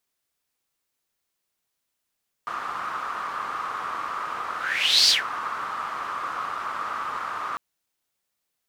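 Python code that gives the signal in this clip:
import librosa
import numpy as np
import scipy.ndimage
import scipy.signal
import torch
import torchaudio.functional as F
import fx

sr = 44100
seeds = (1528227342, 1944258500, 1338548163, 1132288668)

y = fx.whoosh(sr, seeds[0], length_s=5.1, peak_s=2.62, rise_s=0.58, fall_s=0.16, ends_hz=1200.0, peak_hz=4700.0, q=6.6, swell_db=14)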